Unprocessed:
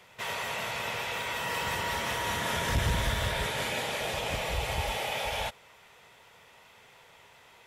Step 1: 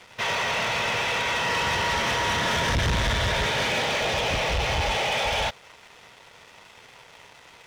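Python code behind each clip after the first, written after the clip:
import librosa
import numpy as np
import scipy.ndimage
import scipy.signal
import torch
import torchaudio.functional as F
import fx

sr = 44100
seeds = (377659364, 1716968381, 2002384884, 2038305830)

y = scipy.signal.sosfilt(scipy.signal.ellip(4, 1.0, 40, 6200.0, 'lowpass', fs=sr, output='sos'), x)
y = fx.leveller(y, sr, passes=3)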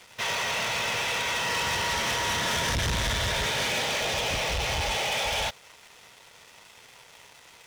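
y = fx.high_shelf(x, sr, hz=5400.0, db=12.0)
y = y * 10.0 ** (-4.5 / 20.0)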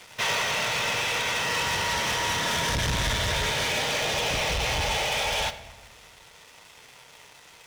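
y = fx.rider(x, sr, range_db=10, speed_s=0.5)
y = fx.room_shoebox(y, sr, seeds[0], volume_m3=760.0, walls='mixed', distance_m=0.45)
y = y * 10.0 ** (1.0 / 20.0)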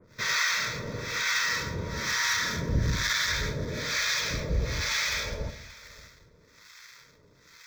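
y = fx.harmonic_tremolo(x, sr, hz=1.1, depth_pct=100, crossover_hz=780.0)
y = fx.fixed_phaser(y, sr, hz=2900.0, stages=6)
y = y + 10.0 ** (-20.5 / 20.0) * np.pad(y, (int(579 * sr / 1000.0), 0))[:len(y)]
y = y * 10.0 ** (5.0 / 20.0)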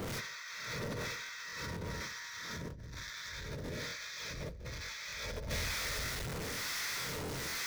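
y = x + 0.5 * 10.0 ** (-37.0 / 20.0) * np.sign(x)
y = fx.over_compress(y, sr, threshold_db=-37.0, ratio=-1.0)
y = fx.buffer_crackle(y, sr, first_s=1.0, period_s=0.24, block=1024, kind='repeat')
y = y * 10.0 ** (-4.5 / 20.0)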